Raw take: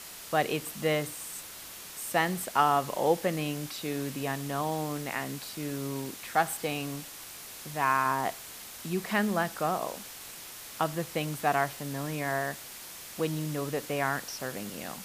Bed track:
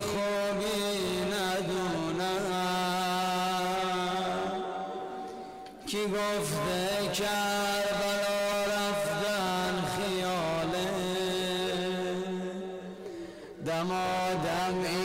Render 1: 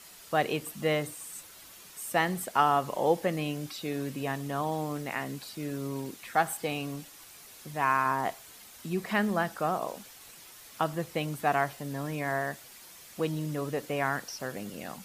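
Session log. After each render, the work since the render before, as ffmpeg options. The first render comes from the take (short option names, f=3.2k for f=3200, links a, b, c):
-af "afftdn=nr=8:nf=-45"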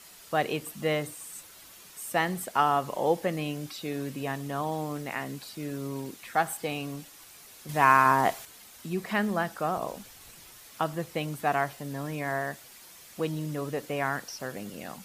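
-filter_complex "[0:a]asettb=1/sr,asplit=3[a][b][c];[a]atrim=end=9.774[d];[b]atrim=start=9.77:end=10.58,asetpts=PTS-STARTPTS,afade=t=in:d=0.004:c=qsin,afade=t=out:st=0.806:d=0.004:c=qsin,lowshelf=f=140:g=11.5[e];[c]atrim=start=10.576[f];[d][e]acrossfade=d=0.004:c1=hsin:c2=qsin[g];[g][f]acrossfade=d=0.004:c1=qsin:c2=hsin,asplit=3[h][i][j];[h]atrim=end=7.692[k];[i]atrim=start=7.688:end=8.452,asetpts=PTS-STARTPTS,volume=6.5dB[l];[j]atrim=start=8.448[m];[k][l]acrossfade=d=0.004:c1=hsin:c2=hsin[n];[n][m]acrossfade=d=0.004:c1=hsin:c2=hsin"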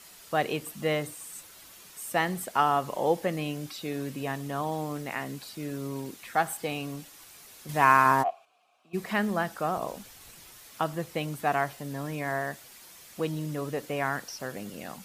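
-filter_complex "[0:a]asplit=3[a][b][c];[a]afade=t=out:st=8.22:d=0.02[d];[b]asplit=3[e][f][g];[e]bandpass=f=730:t=q:w=8,volume=0dB[h];[f]bandpass=f=1.09k:t=q:w=8,volume=-6dB[i];[g]bandpass=f=2.44k:t=q:w=8,volume=-9dB[j];[h][i][j]amix=inputs=3:normalize=0,afade=t=in:st=8.22:d=0.02,afade=t=out:st=8.93:d=0.02[k];[c]afade=t=in:st=8.93:d=0.02[l];[d][k][l]amix=inputs=3:normalize=0"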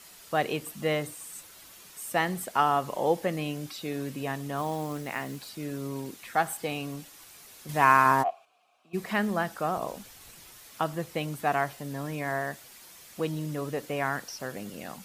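-filter_complex "[0:a]asettb=1/sr,asplit=3[a][b][c];[a]atrim=end=4.574[d];[b]atrim=start=4.57:end=5.49,asetpts=PTS-STARTPTS,afade=t=in:d=0.004:c=qsin,afade=t=out:st=0.916:d=0.004:c=qsin,acrusher=bits=5:mode=log:mix=0:aa=0.000001[e];[c]atrim=start=5.486[f];[d][e]acrossfade=d=0.004:c1=hsin:c2=qsin[g];[g][f]acrossfade=d=0.004:c1=qsin:c2=hsin"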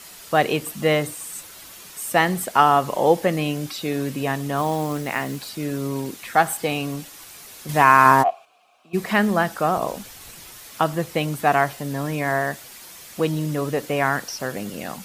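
-af "volume=8.5dB,alimiter=limit=-1dB:level=0:latency=1"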